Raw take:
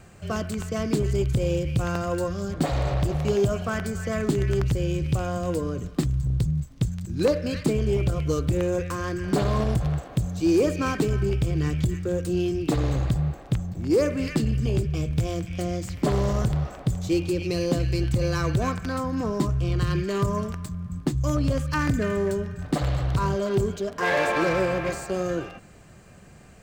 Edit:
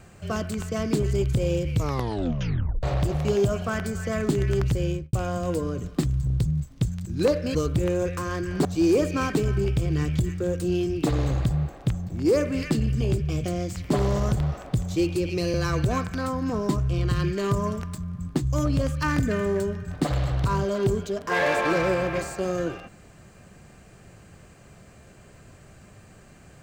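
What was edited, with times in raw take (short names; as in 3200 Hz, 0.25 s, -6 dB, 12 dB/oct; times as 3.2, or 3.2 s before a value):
1.69 tape stop 1.14 s
4.87–5.13 studio fade out
7.55–8.28 cut
9.38–10.3 cut
15.09–15.57 cut
17.67–18.25 cut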